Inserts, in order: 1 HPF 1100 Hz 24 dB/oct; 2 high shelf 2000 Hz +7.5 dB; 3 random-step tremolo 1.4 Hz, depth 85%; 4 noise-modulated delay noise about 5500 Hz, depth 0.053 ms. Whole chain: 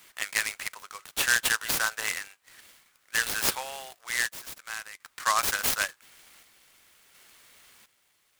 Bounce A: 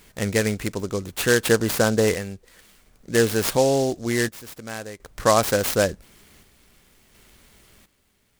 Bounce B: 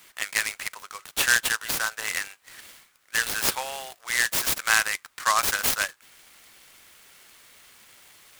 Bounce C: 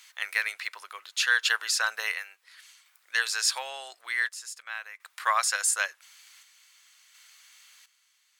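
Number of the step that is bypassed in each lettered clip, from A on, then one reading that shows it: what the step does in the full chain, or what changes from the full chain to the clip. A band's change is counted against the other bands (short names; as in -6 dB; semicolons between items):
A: 1, 125 Hz band +21.0 dB; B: 3, crest factor change +2.5 dB; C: 4, 500 Hz band -3.0 dB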